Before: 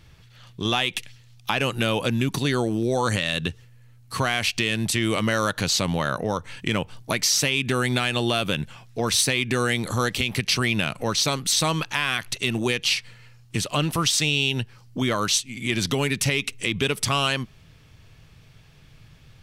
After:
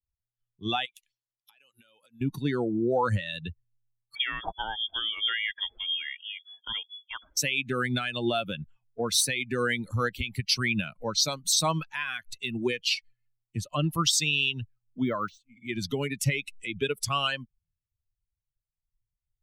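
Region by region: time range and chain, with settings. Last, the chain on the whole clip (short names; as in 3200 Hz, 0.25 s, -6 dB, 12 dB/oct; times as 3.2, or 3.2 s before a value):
0.85–2.21 LPF 12000 Hz + tilt +2.5 dB/oct + compressor 16:1, threshold -29 dBFS
4.15–7.37 bell 420 Hz -7.5 dB 1.4 oct + inverted band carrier 3400 Hz
14.51–15.68 LPF 9800 Hz + de-esser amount 70%
whole clip: per-bin expansion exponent 2; de-esser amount 40%; three-band expander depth 40%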